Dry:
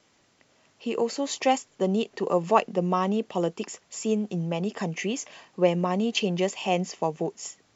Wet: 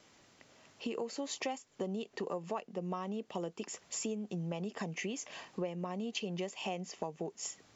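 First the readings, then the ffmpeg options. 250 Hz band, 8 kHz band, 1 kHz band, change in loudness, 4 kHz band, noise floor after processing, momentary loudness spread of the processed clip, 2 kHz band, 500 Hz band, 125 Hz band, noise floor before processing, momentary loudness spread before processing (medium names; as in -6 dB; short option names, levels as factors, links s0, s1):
-12.0 dB, no reading, -15.5 dB, -12.5 dB, -10.0 dB, -65 dBFS, 4 LU, -10.0 dB, -13.5 dB, -11.5 dB, -65 dBFS, 9 LU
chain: -af "acompressor=threshold=0.0141:ratio=6,volume=1.12"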